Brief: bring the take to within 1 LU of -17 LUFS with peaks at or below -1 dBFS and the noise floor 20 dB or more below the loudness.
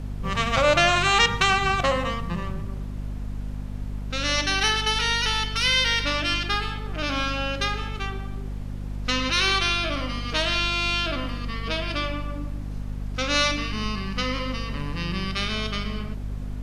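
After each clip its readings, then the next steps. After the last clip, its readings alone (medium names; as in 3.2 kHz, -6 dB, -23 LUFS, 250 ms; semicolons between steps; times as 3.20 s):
hum 50 Hz; highest harmonic 250 Hz; hum level -29 dBFS; noise floor -33 dBFS; noise floor target -44 dBFS; loudness -24.0 LUFS; peak level -5.5 dBFS; loudness target -17.0 LUFS
-> de-hum 50 Hz, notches 5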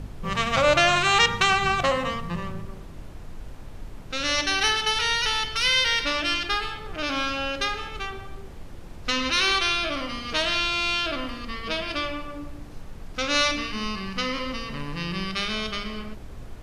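hum not found; noise floor -40 dBFS; noise floor target -44 dBFS
-> noise print and reduce 6 dB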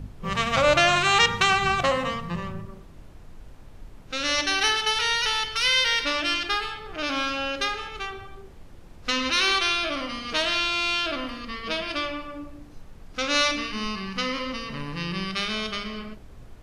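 noise floor -46 dBFS; loudness -24.0 LUFS; peak level -6.0 dBFS; loudness target -17.0 LUFS
-> trim +7 dB; peak limiter -1 dBFS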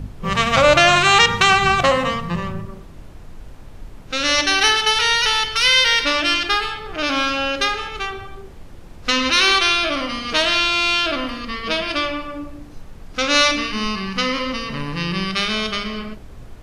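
loudness -17.0 LUFS; peak level -1.0 dBFS; noise floor -39 dBFS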